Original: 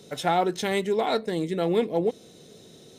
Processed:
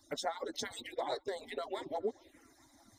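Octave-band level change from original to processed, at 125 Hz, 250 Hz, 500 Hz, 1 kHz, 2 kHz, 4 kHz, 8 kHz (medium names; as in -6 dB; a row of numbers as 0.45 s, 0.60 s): -26.0 dB, -19.0 dB, -13.5 dB, -13.5 dB, -12.0 dB, -9.0 dB, -6.0 dB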